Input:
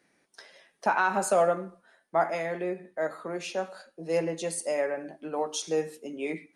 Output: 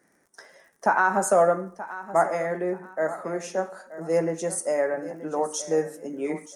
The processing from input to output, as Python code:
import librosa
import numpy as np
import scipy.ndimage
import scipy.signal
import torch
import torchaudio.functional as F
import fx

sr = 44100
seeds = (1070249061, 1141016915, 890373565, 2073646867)

y = fx.dmg_crackle(x, sr, seeds[0], per_s=57.0, level_db=-52.0)
y = fx.band_shelf(y, sr, hz=3300.0, db=-12.5, octaves=1.2)
y = fx.echo_feedback(y, sr, ms=928, feedback_pct=28, wet_db=-15.0)
y = y * librosa.db_to_amplitude(4.0)